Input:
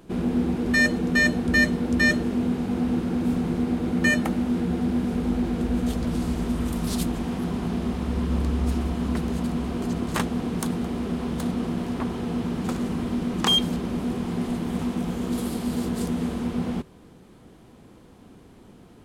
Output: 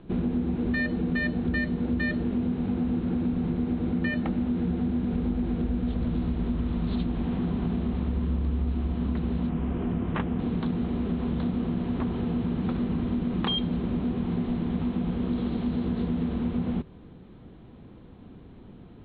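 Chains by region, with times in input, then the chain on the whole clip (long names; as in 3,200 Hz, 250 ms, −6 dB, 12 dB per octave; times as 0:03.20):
0:09.49–0:10.39: Savitzky-Golay smoothing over 25 samples + mains-hum notches 60/120/180/240/300/360/420/480/540/600 Hz
whole clip: Butterworth low-pass 4,100 Hz 96 dB per octave; low-shelf EQ 280 Hz +9 dB; downward compressor, threshold −20 dBFS; level −3.5 dB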